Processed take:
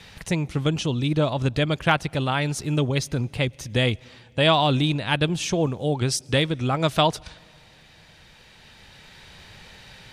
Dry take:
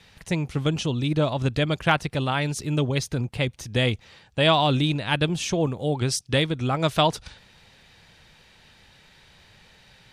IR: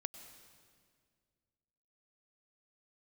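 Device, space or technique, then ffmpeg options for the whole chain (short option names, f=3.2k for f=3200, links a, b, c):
ducked reverb: -filter_complex "[0:a]asplit=3[a][b][c];[1:a]atrim=start_sample=2205[d];[b][d]afir=irnorm=-1:irlink=0[e];[c]apad=whole_len=446570[f];[e][f]sidechaincompress=threshold=-41dB:ratio=8:attack=16:release=1290,volume=5.5dB[g];[a][g]amix=inputs=2:normalize=0"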